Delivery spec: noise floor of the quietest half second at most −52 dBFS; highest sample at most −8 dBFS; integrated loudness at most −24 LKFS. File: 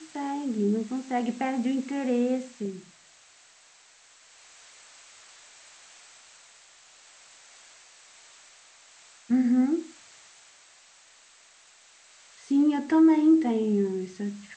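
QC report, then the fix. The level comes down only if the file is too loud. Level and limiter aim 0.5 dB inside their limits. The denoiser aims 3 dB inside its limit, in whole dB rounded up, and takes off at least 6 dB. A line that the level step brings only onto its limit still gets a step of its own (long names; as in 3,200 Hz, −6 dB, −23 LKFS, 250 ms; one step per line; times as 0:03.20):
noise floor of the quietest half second −57 dBFS: in spec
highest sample −12.0 dBFS: in spec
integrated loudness −25.5 LKFS: in spec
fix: no processing needed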